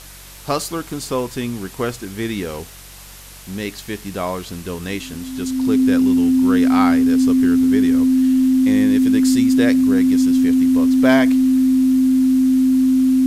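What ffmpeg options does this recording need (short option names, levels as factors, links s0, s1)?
-af "adeclick=t=4,bandreject=f=46.9:t=h:w=4,bandreject=f=93.8:t=h:w=4,bandreject=f=140.7:t=h:w=4,bandreject=f=187.6:t=h:w=4,bandreject=f=260:w=30,afftdn=nr=25:nf=-38"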